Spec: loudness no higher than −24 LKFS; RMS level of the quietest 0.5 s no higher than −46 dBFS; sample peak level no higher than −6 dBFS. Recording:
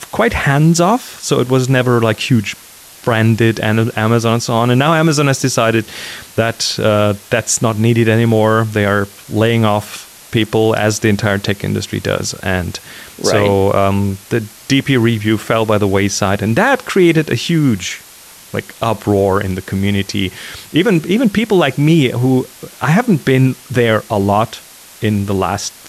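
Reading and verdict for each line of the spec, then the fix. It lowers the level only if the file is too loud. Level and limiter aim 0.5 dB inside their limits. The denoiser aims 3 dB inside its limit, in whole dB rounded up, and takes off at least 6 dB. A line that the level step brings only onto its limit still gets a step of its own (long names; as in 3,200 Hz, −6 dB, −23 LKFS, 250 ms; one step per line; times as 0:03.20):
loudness −14.5 LKFS: out of spec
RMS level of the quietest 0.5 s −39 dBFS: out of spec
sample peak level −1.5 dBFS: out of spec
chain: level −10 dB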